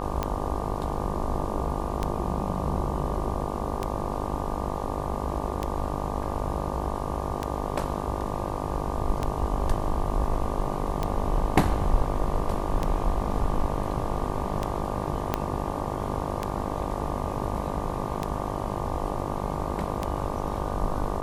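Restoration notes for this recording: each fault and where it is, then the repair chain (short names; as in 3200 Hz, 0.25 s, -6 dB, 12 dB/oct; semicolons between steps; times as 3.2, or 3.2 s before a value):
buzz 50 Hz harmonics 24 -32 dBFS
tick 33 1/3 rpm -13 dBFS
15.34 pop -10 dBFS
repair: de-click; de-hum 50 Hz, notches 24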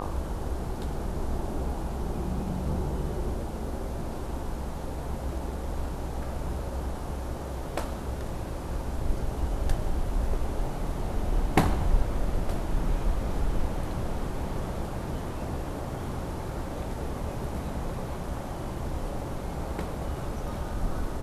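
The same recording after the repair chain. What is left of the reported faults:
15.34 pop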